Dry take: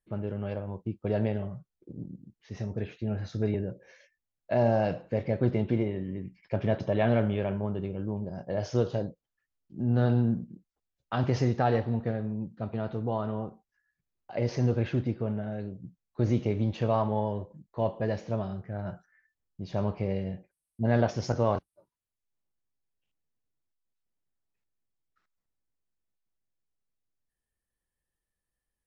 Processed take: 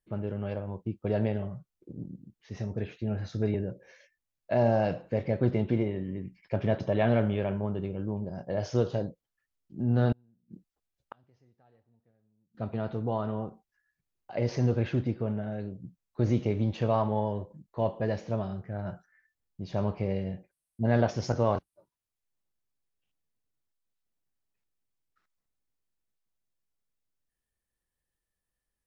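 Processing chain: 10.12–12.55 flipped gate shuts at -28 dBFS, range -39 dB

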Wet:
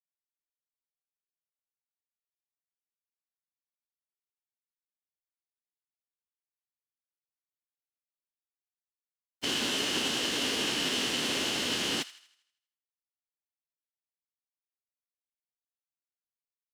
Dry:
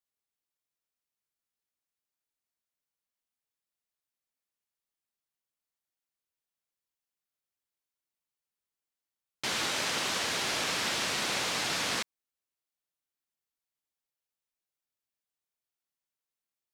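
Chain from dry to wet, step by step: dynamic EQ 840 Hz, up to -5 dB, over -48 dBFS, Q 0.84; small resonant body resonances 370/3000 Hz, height 14 dB, ringing for 25 ms; formant-preserving pitch shift -6 st; bit-crush 9-bit; on a send: thin delay 80 ms, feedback 47%, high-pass 1400 Hz, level -15.5 dB

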